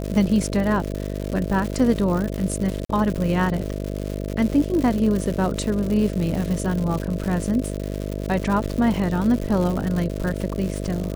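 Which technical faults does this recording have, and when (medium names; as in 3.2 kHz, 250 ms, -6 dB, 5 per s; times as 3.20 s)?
buzz 50 Hz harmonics 13 -28 dBFS
crackle 210 per s -26 dBFS
2.85–2.89 s: dropout 44 ms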